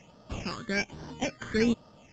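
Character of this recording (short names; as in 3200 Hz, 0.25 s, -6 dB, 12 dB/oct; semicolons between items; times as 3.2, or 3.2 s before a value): aliases and images of a low sample rate 3900 Hz, jitter 0%; phasing stages 8, 1.2 Hz, lowest notch 750–2200 Hz; µ-law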